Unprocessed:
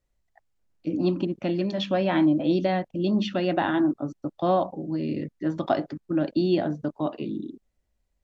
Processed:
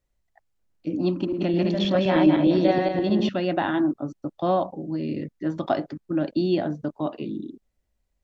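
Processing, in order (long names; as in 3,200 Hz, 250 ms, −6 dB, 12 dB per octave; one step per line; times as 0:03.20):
0:01.12–0:03.29: feedback delay that plays each chunk backwards 104 ms, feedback 53%, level −1 dB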